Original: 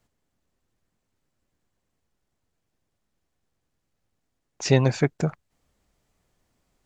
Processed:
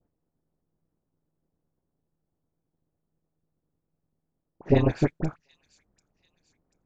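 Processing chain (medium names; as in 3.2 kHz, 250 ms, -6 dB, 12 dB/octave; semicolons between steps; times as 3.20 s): peaking EQ 310 Hz +6 dB 0.51 oct; AM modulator 160 Hz, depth 95%; treble shelf 3.1 kHz -10.5 dB; level-controlled noise filter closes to 1 kHz, open at -23.5 dBFS; phase dispersion highs, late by 46 ms, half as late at 1.7 kHz; on a send: feedback echo behind a high-pass 739 ms, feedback 45%, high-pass 5.6 kHz, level -11 dB; on the sum: trim +1.5 dB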